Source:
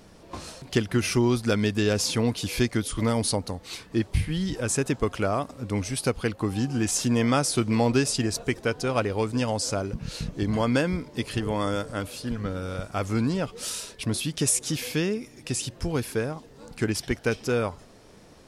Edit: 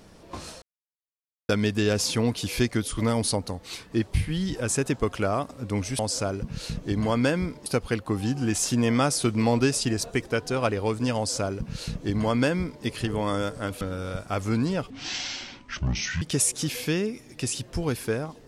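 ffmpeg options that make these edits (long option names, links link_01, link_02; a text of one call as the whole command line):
ffmpeg -i in.wav -filter_complex "[0:a]asplit=8[link_01][link_02][link_03][link_04][link_05][link_06][link_07][link_08];[link_01]atrim=end=0.62,asetpts=PTS-STARTPTS,afade=type=out:start_time=0.616:duration=0.004:curve=hsin[link_09];[link_02]atrim=start=0.62:end=1.49,asetpts=PTS-STARTPTS,volume=0[link_10];[link_03]atrim=start=1.49:end=5.992,asetpts=PTS-STARTPTS,afade=type=in:duration=0.004:curve=hsin[link_11];[link_04]atrim=start=9.498:end=11.172[link_12];[link_05]atrim=start=5.988:end=12.142[link_13];[link_06]atrim=start=12.448:end=13.544[link_14];[link_07]atrim=start=13.54:end=14.29,asetpts=PTS-STARTPTS,asetrate=25137,aresample=44100,atrim=end_sample=58026,asetpts=PTS-STARTPTS[link_15];[link_08]atrim=start=14.286[link_16];[link_09][link_10][link_11]concat=n=3:v=0:a=1[link_17];[link_17][link_12]acrossfade=duration=0.004:curve1=hsin:curve2=hsin[link_18];[link_18][link_13]acrossfade=duration=0.004:curve1=hsin:curve2=hsin[link_19];[link_19][link_14]acrossfade=duration=0.004:curve1=hsin:curve2=hsin[link_20];[link_20][link_15]acrossfade=duration=0.004:curve1=hsin:curve2=hsin[link_21];[link_21][link_16]acrossfade=duration=0.004:curve1=hsin:curve2=hsin" out.wav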